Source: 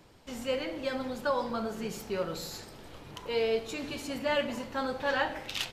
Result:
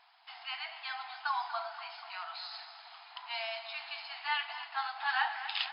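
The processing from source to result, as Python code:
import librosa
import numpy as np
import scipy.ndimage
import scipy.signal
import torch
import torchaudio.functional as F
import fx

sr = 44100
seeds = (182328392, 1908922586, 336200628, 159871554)

p1 = fx.brickwall_bandpass(x, sr, low_hz=660.0, high_hz=5200.0)
y = p1 + fx.echo_feedback(p1, sr, ms=242, feedback_pct=58, wet_db=-12, dry=0)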